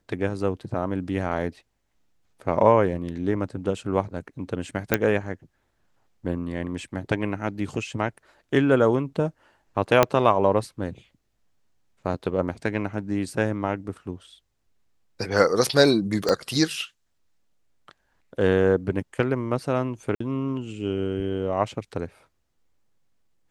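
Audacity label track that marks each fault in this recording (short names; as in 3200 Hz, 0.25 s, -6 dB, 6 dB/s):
4.940000	4.940000	pop -4 dBFS
10.030000	10.030000	pop -3 dBFS
16.290000	16.290000	pop -10 dBFS
20.150000	20.200000	gap 54 ms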